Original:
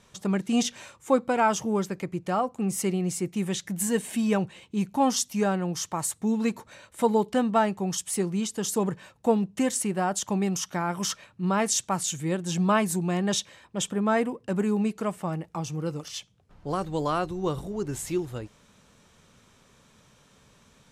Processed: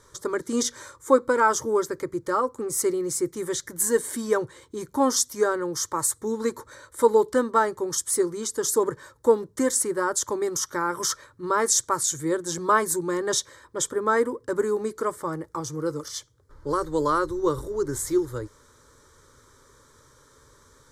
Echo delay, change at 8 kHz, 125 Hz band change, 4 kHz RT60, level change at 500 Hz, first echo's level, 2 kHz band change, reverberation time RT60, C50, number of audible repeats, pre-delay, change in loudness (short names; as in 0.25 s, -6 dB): none, +5.0 dB, -8.0 dB, none, +5.0 dB, none, +3.5 dB, none, none, none, none, +2.5 dB